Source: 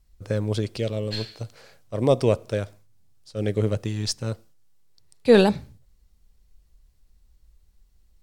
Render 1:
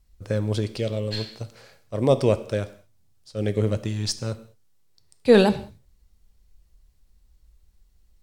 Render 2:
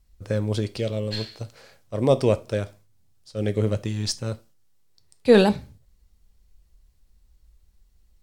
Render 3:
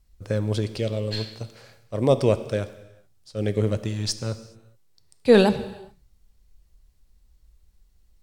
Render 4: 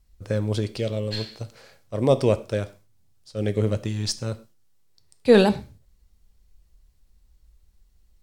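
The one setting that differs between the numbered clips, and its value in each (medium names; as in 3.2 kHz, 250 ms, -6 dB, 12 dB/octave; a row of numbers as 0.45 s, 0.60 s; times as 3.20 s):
gated-style reverb, gate: 230 ms, 100 ms, 450 ms, 150 ms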